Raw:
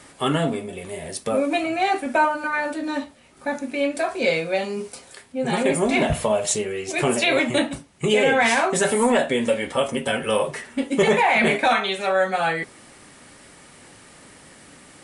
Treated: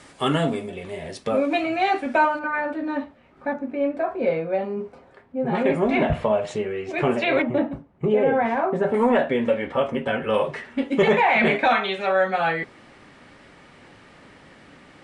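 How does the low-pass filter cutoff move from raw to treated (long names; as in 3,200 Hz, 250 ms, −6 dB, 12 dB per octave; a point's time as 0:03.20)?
7,400 Hz
from 0:00.69 4,400 Hz
from 0:02.39 1,900 Hz
from 0:03.53 1,200 Hz
from 0:05.55 2,200 Hz
from 0:07.42 1,000 Hz
from 0:08.94 2,100 Hz
from 0:10.34 3,300 Hz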